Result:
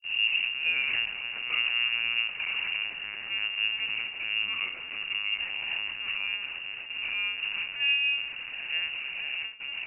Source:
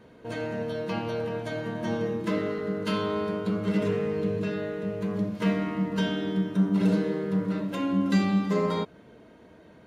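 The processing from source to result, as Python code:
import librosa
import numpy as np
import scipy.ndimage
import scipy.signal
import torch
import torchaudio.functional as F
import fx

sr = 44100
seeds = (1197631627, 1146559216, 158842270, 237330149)

p1 = fx.tape_start_head(x, sr, length_s=0.93)
p2 = scipy.signal.sosfilt(scipy.signal.butter(4, 84.0, 'highpass', fs=sr, output='sos'), p1)
p3 = fx.tilt_eq(p2, sr, slope=-2.0)
p4 = fx.over_compress(p3, sr, threshold_db=-28.0, ratio=-1.0)
p5 = p4 + fx.echo_diffused(p4, sr, ms=644, feedback_pct=59, wet_db=-10, dry=0)
p6 = fx.step_gate(p5, sr, bpm=100, pattern='xxx.xxx...xx', floor_db=-12.0, edge_ms=4.5)
p7 = fx.schmitt(p6, sr, flips_db=-42.5)
p8 = p6 + F.gain(torch.from_numpy(p7), -5.5).numpy()
p9 = fx.room_flutter(p8, sr, wall_m=3.1, rt60_s=0.39)
p10 = fx.lpc_vocoder(p9, sr, seeds[0], excitation='pitch_kept', order=10)
p11 = fx.freq_invert(p10, sr, carrier_hz=2800)
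p12 = fx.end_taper(p11, sr, db_per_s=390.0)
y = F.gain(torch.from_numpy(p12), -8.5).numpy()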